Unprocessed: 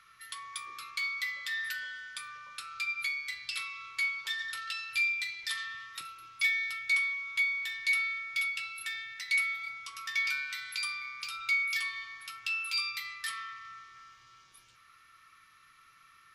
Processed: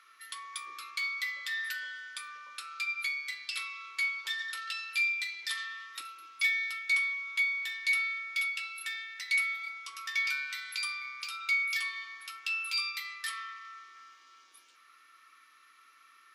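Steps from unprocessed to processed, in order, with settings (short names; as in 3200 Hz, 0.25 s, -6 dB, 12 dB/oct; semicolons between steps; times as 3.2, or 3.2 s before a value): brick-wall FIR high-pass 230 Hz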